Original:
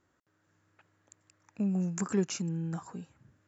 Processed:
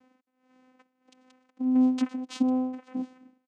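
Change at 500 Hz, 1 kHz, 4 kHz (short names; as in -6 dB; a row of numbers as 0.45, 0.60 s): -2.0, +7.0, +1.0 dB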